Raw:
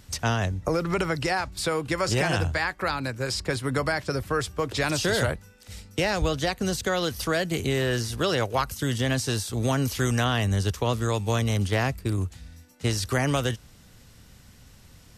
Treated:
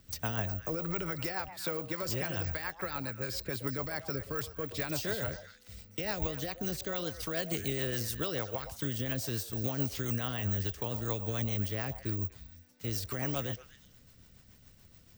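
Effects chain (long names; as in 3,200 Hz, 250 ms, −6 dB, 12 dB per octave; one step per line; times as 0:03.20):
0:01.48–0:02.03: high-pass filter 120 Hz 24 dB per octave
brickwall limiter −18 dBFS, peak gain reduction 5.5 dB
0:07.37–0:08.15: high-shelf EQ 6,600 Hz +10.5 dB
bad sample-rate conversion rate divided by 2×, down filtered, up zero stuff
rotating-speaker cabinet horn 7 Hz
on a send: echo through a band-pass that steps 121 ms, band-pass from 700 Hz, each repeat 1.4 octaves, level −8.5 dB
on the sum: level −7 dB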